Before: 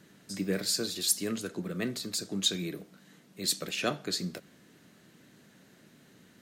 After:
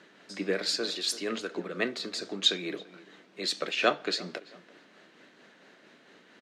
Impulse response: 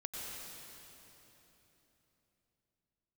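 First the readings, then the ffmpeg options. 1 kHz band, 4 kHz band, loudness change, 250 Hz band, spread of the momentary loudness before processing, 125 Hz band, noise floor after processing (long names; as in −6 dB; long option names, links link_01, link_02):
+7.5 dB, +3.0 dB, +1.5 dB, −2.0 dB, 11 LU, −8.5 dB, −59 dBFS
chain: -filter_complex "[0:a]highpass=410,lowpass=3700,asplit=2[link_01][link_02];[link_02]adelay=336,lowpass=frequency=2100:poles=1,volume=-18dB,asplit=2[link_03][link_04];[link_04]adelay=336,lowpass=frequency=2100:poles=1,volume=0.27[link_05];[link_01][link_03][link_05]amix=inputs=3:normalize=0,tremolo=f=4.4:d=0.33,volume=8dB"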